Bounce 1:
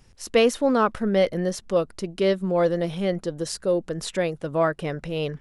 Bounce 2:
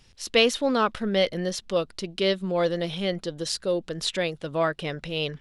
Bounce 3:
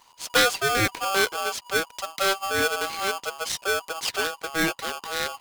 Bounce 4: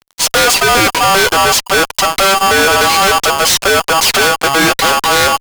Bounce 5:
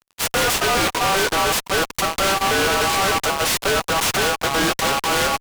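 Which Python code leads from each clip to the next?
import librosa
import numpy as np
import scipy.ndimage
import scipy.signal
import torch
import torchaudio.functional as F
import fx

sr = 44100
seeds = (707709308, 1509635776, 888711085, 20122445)

y1 = fx.peak_eq(x, sr, hz=3600.0, db=11.5, octaves=1.4)
y1 = F.gain(torch.from_numpy(y1), -3.5).numpy()
y2 = y1 * np.sign(np.sin(2.0 * np.pi * 970.0 * np.arange(len(y1)) / sr))
y3 = fx.fuzz(y2, sr, gain_db=40.0, gate_db=-47.0)
y3 = F.gain(torch.from_numpy(y3), 4.5).numpy()
y4 = fx.noise_mod_delay(y3, sr, seeds[0], noise_hz=1400.0, depth_ms=0.08)
y4 = F.gain(torch.from_numpy(y4), -8.5).numpy()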